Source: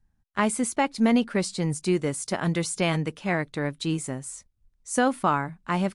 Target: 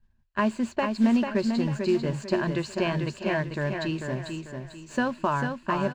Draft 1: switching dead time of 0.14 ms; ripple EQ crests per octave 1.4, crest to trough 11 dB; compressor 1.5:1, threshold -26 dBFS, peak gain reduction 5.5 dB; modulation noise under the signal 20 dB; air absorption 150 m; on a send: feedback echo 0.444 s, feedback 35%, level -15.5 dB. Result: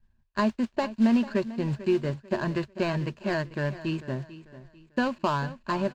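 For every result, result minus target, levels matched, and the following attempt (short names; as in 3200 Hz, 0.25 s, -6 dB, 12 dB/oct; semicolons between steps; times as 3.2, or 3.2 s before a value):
echo-to-direct -10 dB; switching dead time: distortion +9 dB
switching dead time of 0.14 ms; ripple EQ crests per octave 1.4, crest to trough 11 dB; compressor 1.5:1, threshold -26 dBFS, peak gain reduction 5.5 dB; modulation noise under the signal 20 dB; air absorption 150 m; on a send: feedback echo 0.444 s, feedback 35%, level -5.5 dB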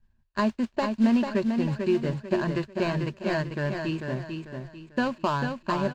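switching dead time: distortion +9 dB
switching dead time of 0.026 ms; ripple EQ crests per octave 1.4, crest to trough 11 dB; compressor 1.5:1, threshold -26 dBFS, peak gain reduction 5.5 dB; modulation noise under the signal 20 dB; air absorption 150 m; on a send: feedback echo 0.444 s, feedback 35%, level -5.5 dB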